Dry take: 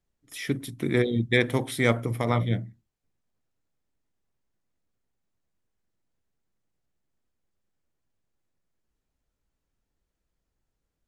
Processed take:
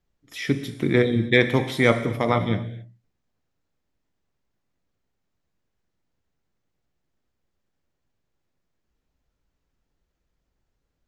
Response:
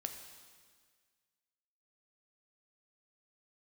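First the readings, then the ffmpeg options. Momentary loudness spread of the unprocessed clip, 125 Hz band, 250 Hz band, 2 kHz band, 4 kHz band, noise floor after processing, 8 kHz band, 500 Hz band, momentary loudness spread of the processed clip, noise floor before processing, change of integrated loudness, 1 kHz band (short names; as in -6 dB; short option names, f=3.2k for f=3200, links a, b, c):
10 LU, +2.0 dB, +4.5 dB, +4.5 dB, +4.0 dB, -78 dBFS, -2.5 dB, +5.0 dB, 11 LU, -82 dBFS, +4.0 dB, +5.0 dB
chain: -filter_complex "[0:a]asplit=2[a][b];[b]lowpass=f=9.4k:w=0.5412,lowpass=f=9.4k:w=1.3066[c];[1:a]atrim=start_sample=2205,afade=t=out:st=0.33:d=0.01,atrim=end_sample=14994[d];[c][d]afir=irnorm=-1:irlink=0,volume=5.5dB[e];[a][e]amix=inputs=2:normalize=0,volume=-3dB"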